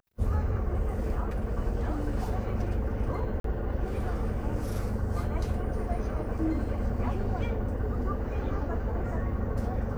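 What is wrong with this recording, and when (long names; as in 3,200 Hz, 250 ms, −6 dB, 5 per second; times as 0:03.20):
0:03.40–0:03.44: drop-out 43 ms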